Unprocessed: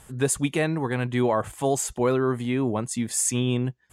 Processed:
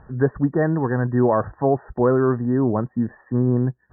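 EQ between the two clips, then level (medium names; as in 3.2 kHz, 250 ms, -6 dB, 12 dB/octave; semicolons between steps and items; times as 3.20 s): brick-wall FIR low-pass 1.9 kHz; distance through air 490 m; +6.0 dB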